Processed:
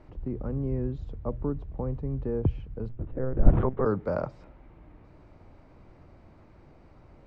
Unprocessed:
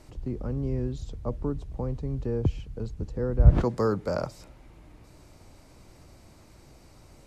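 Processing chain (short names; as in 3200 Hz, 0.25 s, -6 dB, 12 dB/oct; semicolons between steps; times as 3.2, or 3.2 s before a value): 2.89–3.86 monotone LPC vocoder at 8 kHz 130 Hz; LPF 1900 Hz 12 dB/oct; notches 60/120 Hz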